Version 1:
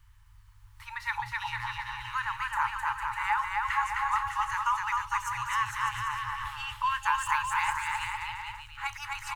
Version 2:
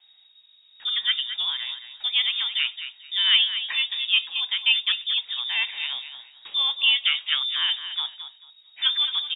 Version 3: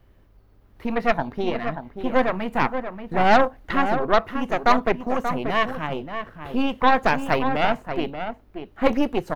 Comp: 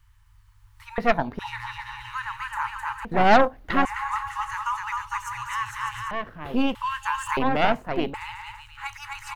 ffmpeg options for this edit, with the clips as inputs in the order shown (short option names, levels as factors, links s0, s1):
-filter_complex "[2:a]asplit=4[s0][s1][s2][s3];[0:a]asplit=5[s4][s5][s6][s7][s8];[s4]atrim=end=0.982[s9];[s0]atrim=start=0.978:end=1.392[s10];[s5]atrim=start=1.388:end=3.052[s11];[s1]atrim=start=3.048:end=3.852[s12];[s6]atrim=start=3.848:end=6.112[s13];[s2]atrim=start=6.108:end=6.752[s14];[s7]atrim=start=6.748:end=7.372[s15];[s3]atrim=start=7.368:end=8.142[s16];[s8]atrim=start=8.138[s17];[s9][s10]acrossfade=d=0.004:c1=hsin:c2=hsin[s18];[s18][s11]acrossfade=d=0.004:c1=hsin:c2=hsin[s19];[s19][s12]acrossfade=d=0.004:c1=hsin:c2=hsin[s20];[s20][s13]acrossfade=d=0.004:c1=hsin:c2=hsin[s21];[s21][s14]acrossfade=d=0.004:c1=hsin:c2=hsin[s22];[s22][s15]acrossfade=d=0.004:c1=hsin:c2=hsin[s23];[s23][s16]acrossfade=d=0.004:c1=hsin:c2=hsin[s24];[s24][s17]acrossfade=d=0.004:c1=hsin:c2=hsin"